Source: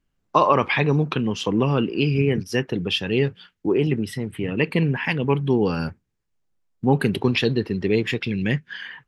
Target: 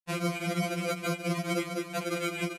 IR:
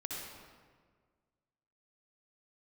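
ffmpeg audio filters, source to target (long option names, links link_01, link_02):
-filter_complex "[0:a]afftfilt=real='real(if(lt(b,736),b+184*(1-2*mod(floor(b/184),2)),b),0)':imag='imag(if(lt(b,736),b+184*(1-2*mod(floor(b/184),2)),b),0)':win_size=2048:overlap=0.75,acrossover=split=280[link_01][link_02];[link_01]acompressor=mode=upward:threshold=-51dB:ratio=2.5[link_03];[link_03][link_02]amix=inputs=2:normalize=0,agate=range=-59dB:threshold=-34dB:ratio=16:detection=peak,aresample=11025,acrusher=samples=29:mix=1:aa=0.000001,aresample=44100,aecho=1:1:687|1374|2061|2748:0.376|0.128|0.0434|0.0148,asetrate=103194,aresample=44100,equalizer=frequency=2400:width_type=o:width=0.24:gain=10.5,atempo=1.5,acompressor=threshold=-22dB:ratio=6,highpass=200,afftfilt=real='re*2.83*eq(mod(b,8),0)':imag='im*2.83*eq(mod(b,8),0)':win_size=2048:overlap=0.75"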